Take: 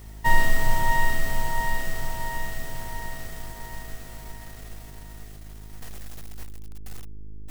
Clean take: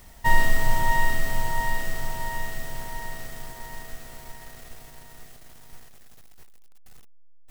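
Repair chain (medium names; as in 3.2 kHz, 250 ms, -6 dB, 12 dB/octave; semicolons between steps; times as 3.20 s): de-hum 52.3 Hz, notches 8; gain correction -10 dB, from 5.82 s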